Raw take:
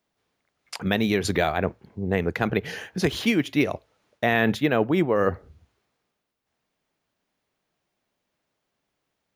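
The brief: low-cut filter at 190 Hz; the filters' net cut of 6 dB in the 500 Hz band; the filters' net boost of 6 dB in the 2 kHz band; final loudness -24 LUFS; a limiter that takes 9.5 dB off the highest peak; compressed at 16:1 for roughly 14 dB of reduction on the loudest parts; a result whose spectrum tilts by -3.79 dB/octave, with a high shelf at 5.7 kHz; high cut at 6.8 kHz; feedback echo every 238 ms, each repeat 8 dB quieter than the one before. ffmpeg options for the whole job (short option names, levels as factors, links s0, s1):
-af "highpass=190,lowpass=6800,equalizer=f=500:t=o:g=-8,equalizer=f=2000:t=o:g=6.5,highshelf=f=5700:g=8.5,acompressor=threshold=0.0355:ratio=16,alimiter=limit=0.0708:level=0:latency=1,aecho=1:1:238|476|714|952|1190:0.398|0.159|0.0637|0.0255|0.0102,volume=3.76"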